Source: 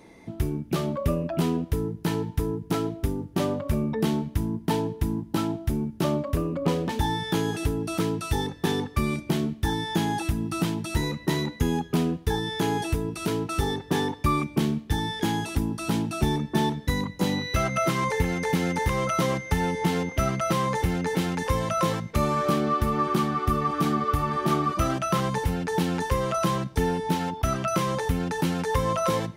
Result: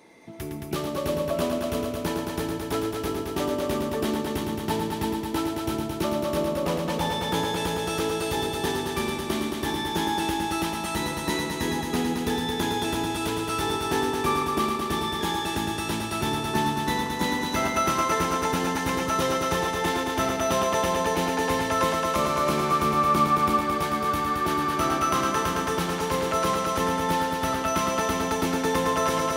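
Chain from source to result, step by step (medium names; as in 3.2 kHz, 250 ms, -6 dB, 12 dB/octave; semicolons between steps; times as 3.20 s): high-pass 390 Hz 6 dB/octave; multi-head delay 110 ms, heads all three, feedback 69%, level -6.5 dB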